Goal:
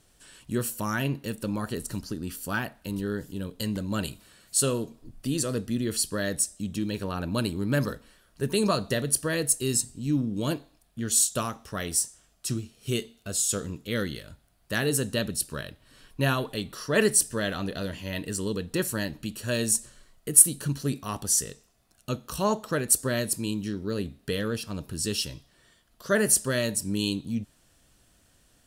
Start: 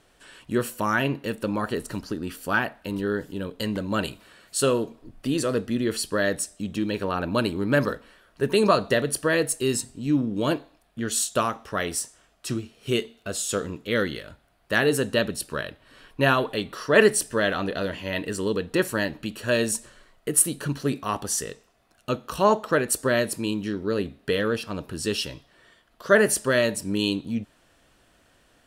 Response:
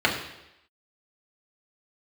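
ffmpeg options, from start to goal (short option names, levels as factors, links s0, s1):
-af "bass=f=250:g=9,treble=f=4000:g=12,volume=0.422"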